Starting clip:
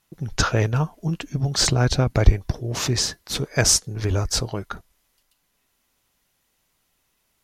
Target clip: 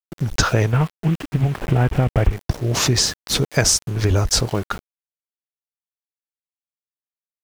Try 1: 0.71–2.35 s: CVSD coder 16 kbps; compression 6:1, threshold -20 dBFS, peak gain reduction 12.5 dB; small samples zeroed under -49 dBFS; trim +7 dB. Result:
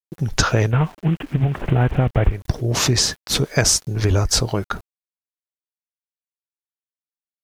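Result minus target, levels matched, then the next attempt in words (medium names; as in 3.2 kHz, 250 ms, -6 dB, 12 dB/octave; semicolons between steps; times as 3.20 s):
small samples zeroed: distortion -13 dB
0.71–2.35 s: CVSD coder 16 kbps; compression 6:1, threshold -20 dBFS, peak gain reduction 12.5 dB; small samples zeroed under -38 dBFS; trim +7 dB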